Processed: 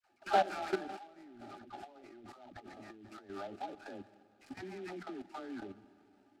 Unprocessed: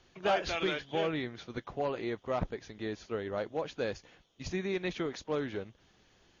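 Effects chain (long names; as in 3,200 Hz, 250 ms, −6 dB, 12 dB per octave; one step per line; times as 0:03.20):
gap after every zero crossing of 0.11 ms
Chebyshev band-pass filter 110–5,000 Hz, order 4
parametric band 2,000 Hz −11.5 dB 0.53 octaves
all-pass dispersion lows, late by 112 ms, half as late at 720 Hz
output level in coarse steps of 15 dB
convolution reverb RT60 3.3 s, pre-delay 108 ms, DRR 16.5 dB
dynamic equaliser 1,300 Hz, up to +4 dB, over −60 dBFS, Q 1.3
0:00.89–0:03.30: compressor whose output falls as the input rises −51 dBFS, ratio −0.5
phaser with its sweep stopped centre 720 Hz, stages 8
hollow resonant body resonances 830/1,200/4,000 Hz, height 13 dB, ringing for 85 ms
short delay modulated by noise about 2,300 Hz, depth 0.032 ms
level +4 dB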